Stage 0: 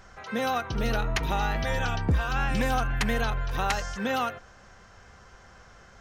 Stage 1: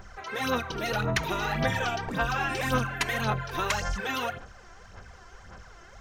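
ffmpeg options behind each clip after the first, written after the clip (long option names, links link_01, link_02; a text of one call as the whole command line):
ffmpeg -i in.wav -af "bandreject=frequency=271.6:width_type=h:width=4,bandreject=frequency=543.2:width_type=h:width=4,bandreject=frequency=814.8:width_type=h:width=4,bandreject=frequency=1086.4:width_type=h:width=4,bandreject=frequency=1358:width_type=h:width=4,bandreject=frequency=1629.6:width_type=h:width=4,bandreject=frequency=1901.2:width_type=h:width=4,bandreject=frequency=2172.8:width_type=h:width=4,bandreject=frequency=2444.4:width_type=h:width=4,bandreject=frequency=2716:width_type=h:width=4,bandreject=frequency=2987.6:width_type=h:width=4,bandreject=frequency=3259.2:width_type=h:width=4,bandreject=frequency=3530.8:width_type=h:width=4,bandreject=frequency=3802.4:width_type=h:width=4,bandreject=frequency=4074:width_type=h:width=4,bandreject=frequency=4345.6:width_type=h:width=4,bandreject=frequency=4617.2:width_type=h:width=4,bandreject=frequency=4888.8:width_type=h:width=4,bandreject=frequency=5160.4:width_type=h:width=4,bandreject=frequency=5432:width_type=h:width=4,bandreject=frequency=5703.6:width_type=h:width=4,bandreject=frequency=5975.2:width_type=h:width=4,bandreject=frequency=6246.8:width_type=h:width=4,bandreject=frequency=6518.4:width_type=h:width=4,bandreject=frequency=6790:width_type=h:width=4,bandreject=frequency=7061.6:width_type=h:width=4,bandreject=frequency=7333.2:width_type=h:width=4,bandreject=frequency=7604.8:width_type=h:width=4,bandreject=frequency=7876.4:width_type=h:width=4,bandreject=frequency=8148:width_type=h:width=4,bandreject=frequency=8419.6:width_type=h:width=4,bandreject=frequency=8691.2:width_type=h:width=4,bandreject=frequency=8962.8:width_type=h:width=4,bandreject=frequency=9234.4:width_type=h:width=4,afftfilt=real='re*lt(hypot(re,im),0.251)':imag='im*lt(hypot(re,im),0.251)':win_size=1024:overlap=0.75,aphaser=in_gain=1:out_gain=1:delay=3:decay=0.58:speed=1.8:type=sinusoidal" out.wav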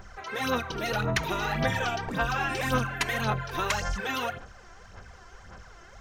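ffmpeg -i in.wav -af anull out.wav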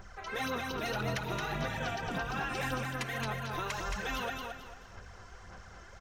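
ffmpeg -i in.wav -filter_complex "[0:a]alimiter=limit=-22dB:level=0:latency=1:release=461,asplit=2[link_01][link_02];[link_02]aecho=0:1:221|442|663|884:0.596|0.185|0.0572|0.0177[link_03];[link_01][link_03]amix=inputs=2:normalize=0,volume=-3.5dB" out.wav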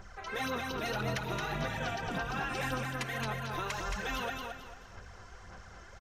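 ffmpeg -i in.wav -af "aresample=32000,aresample=44100" out.wav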